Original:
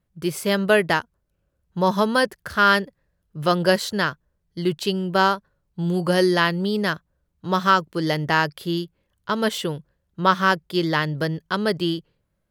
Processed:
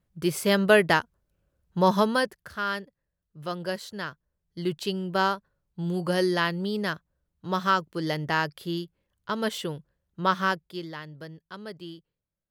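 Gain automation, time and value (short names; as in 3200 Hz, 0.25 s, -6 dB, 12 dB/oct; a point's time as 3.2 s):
1.95 s -1 dB
2.63 s -13 dB
3.93 s -13 dB
4.62 s -6 dB
10.45 s -6 dB
10.96 s -17.5 dB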